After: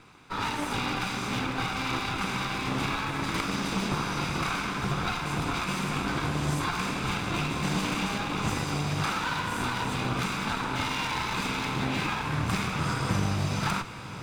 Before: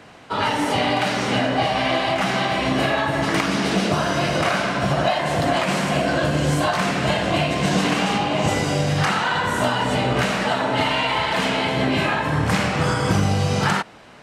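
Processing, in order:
lower of the sound and its delayed copy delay 0.82 ms
feedback delay with all-pass diffusion 1,151 ms, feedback 60%, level −12.5 dB
level −7.5 dB

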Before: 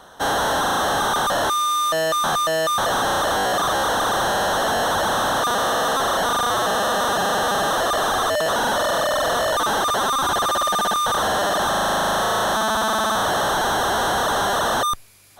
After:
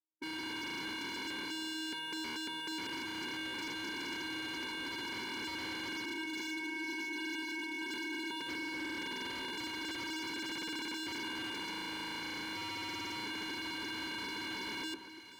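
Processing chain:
0:06.05–0:08.40: three sine waves on the formant tracks
downward expander −15 dBFS
dynamic equaliser 1,200 Hz, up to +7 dB, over −42 dBFS, Q 0.77
automatic gain control gain up to 10.5 dB
leveller curve on the samples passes 5
soft clipping −10.5 dBFS, distortion −15 dB
channel vocoder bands 4, square 316 Hz
formant resonators in series e
wave folding −37 dBFS
delay that swaps between a low-pass and a high-pass 241 ms, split 1,600 Hz, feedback 72%, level −10 dB
level +1 dB

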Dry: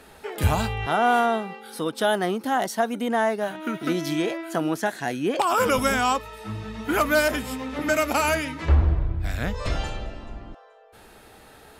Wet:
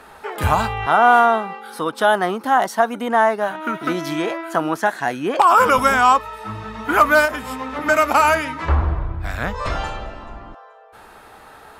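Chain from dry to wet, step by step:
0:07.25–0:07.86: downward compressor 3 to 1, threshold −27 dBFS, peak gain reduction 6.5 dB
parametric band 1,100 Hz +11.5 dB 1.5 octaves

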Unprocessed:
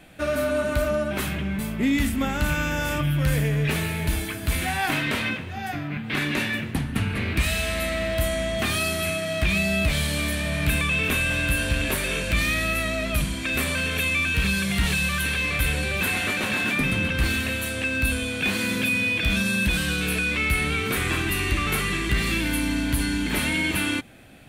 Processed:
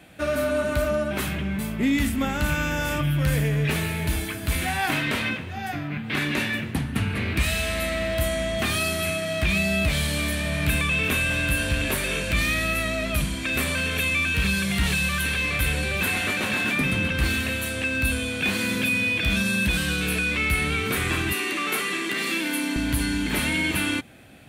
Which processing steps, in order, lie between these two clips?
high-pass filter 45 Hz 24 dB per octave, from 0:21.33 240 Hz, from 0:22.76 48 Hz

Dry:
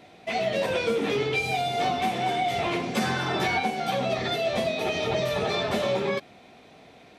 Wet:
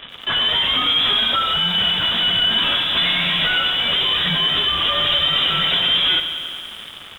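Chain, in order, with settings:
0:05.12–0:05.73: comb filter 1.3 ms, depth 37%
in parallel at −9 dB: fuzz pedal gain 43 dB, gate −50 dBFS
on the sum: voice inversion scrambler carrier 3,700 Hz
feedback echo at a low word length 92 ms, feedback 80%, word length 7 bits, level −12 dB

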